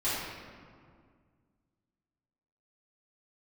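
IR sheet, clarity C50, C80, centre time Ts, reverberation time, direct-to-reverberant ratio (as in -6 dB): -2.5 dB, 0.5 dB, 0.112 s, 2.0 s, -14.0 dB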